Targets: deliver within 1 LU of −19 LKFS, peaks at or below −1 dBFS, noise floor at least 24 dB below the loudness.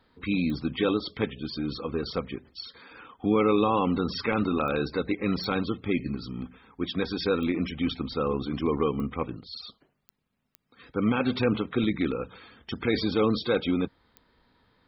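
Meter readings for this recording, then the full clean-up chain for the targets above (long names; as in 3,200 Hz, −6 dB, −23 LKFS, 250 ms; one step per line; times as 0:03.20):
number of clicks 8; integrated loudness −28.0 LKFS; sample peak −12.0 dBFS; target loudness −19.0 LKFS
→ click removal
level +9 dB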